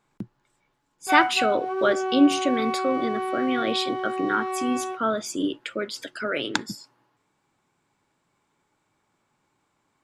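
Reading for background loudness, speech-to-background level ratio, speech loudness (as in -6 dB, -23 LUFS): -28.5 LUFS, 3.0 dB, -25.5 LUFS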